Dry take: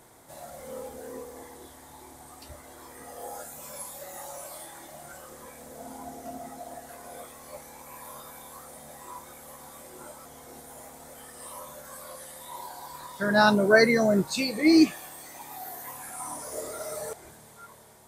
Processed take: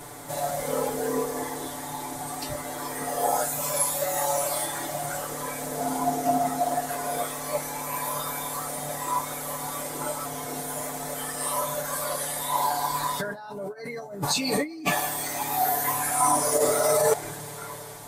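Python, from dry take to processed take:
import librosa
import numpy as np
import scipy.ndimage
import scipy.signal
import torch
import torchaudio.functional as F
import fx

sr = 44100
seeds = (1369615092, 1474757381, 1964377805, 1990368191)

y = fx.dynamic_eq(x, sr, hz=830.0, q=1.4, threshold_db=-42.0, ratio=4.0, max_db=7)
y = fx.over_compress(y, sr, threshold_db=-34.0, ratio=-1.0)
y = y + 0.98 * np.pad(y, (int(6.9 * sr / 1000.0), 0))[:len(y)]
y = y * librosa.db_to_amplitude(4.0)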